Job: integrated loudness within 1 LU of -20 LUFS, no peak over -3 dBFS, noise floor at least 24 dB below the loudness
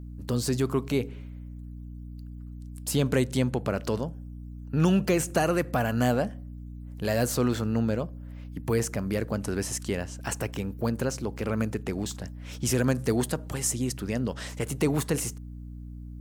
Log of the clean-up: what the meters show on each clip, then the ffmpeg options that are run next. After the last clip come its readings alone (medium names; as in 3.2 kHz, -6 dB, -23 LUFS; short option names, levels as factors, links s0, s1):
hum 60 Hz; highest harmonic 300 Hz; hum level -38 dBFS; loudness -28.5 LUFS; peak level -11.5 dBFS; loudness target -20.0 LUFS
-> -af "bandreject=f=60:t=h:w=4,bandreject=f=120:t=h:w=4,bandreject=f=180:t=h:w=4,bandreject=f=240:t=h:w=4,bandreject=f=300:t=h:w=4"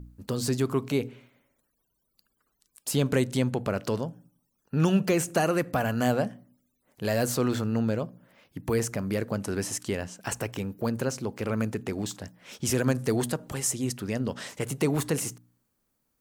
hum not found; loudness -29.0 LUFS; peak level -10.5 dBFS; loudness target -20.0 LUFS
-> -af "volume=2.82,alimiter=limit=0.708:level=0:latency=1"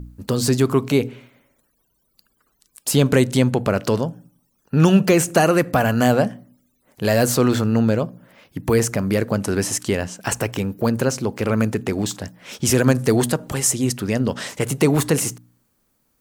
loudness -20.0 LUFS; peak level -3.0 dBFS; noise floor -68 dBFS